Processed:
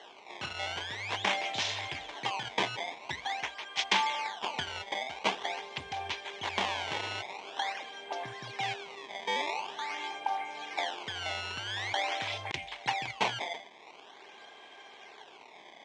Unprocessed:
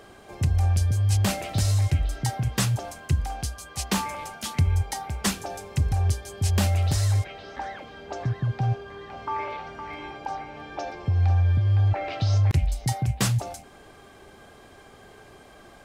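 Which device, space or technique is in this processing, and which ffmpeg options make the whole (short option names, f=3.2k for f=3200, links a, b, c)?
circuit-bent sampling toy: -af "acrusher=samples=18:mix=1:aa=0.000001:lfo=1:lforange=28.8:lforate=0.46,highpass=540,equalizer=f=550:t=q:w=4:g=-5,equalizer=f=930:t=q:w=4:g=5,equalizer=f=1.3k:t=q:w=4:g=-8,equalizer=f=2.2k:t=q:w=4:g=6,equalizer=f=3.3k:t=q:w=4:g=8,equalizer=f=4.7k:t=q:w=4:g=-4,lowpass=f=6k:w=0.5412,lowpass=f=6k:w=1.3066"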